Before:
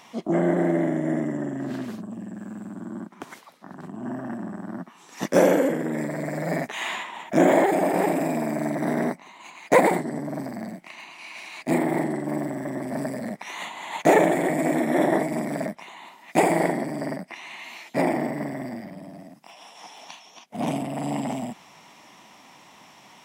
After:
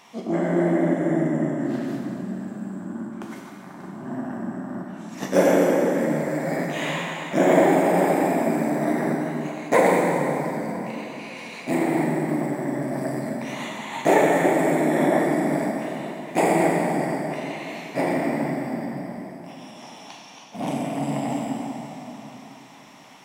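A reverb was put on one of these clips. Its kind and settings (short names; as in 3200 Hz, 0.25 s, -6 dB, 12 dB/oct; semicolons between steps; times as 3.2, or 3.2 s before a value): plate-style reverb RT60 3.6 s, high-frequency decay 0.7×, DRR -2.5 dB; gain -2.5 dB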